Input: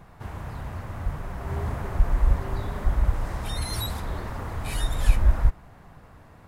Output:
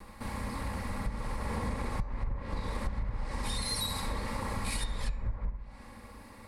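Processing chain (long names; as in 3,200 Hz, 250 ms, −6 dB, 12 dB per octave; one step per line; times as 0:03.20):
lower of the sound and its delayed copy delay 3.6 ms
EQ curve with evenly spaced ripples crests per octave 0.93, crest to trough 7 dB
flutter between parallel walls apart 11.3 metres, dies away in 0.49 s
treble cut that deepens with the level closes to 1,700 Hz, closed at −13.5 dBFS
high-shelf EQ 4,000 Hz +9 dB
downward compressor 16 to 1, threshold −29 dBFS, peak gain reduction 20 dB
hum removal 290.6 Hz, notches 29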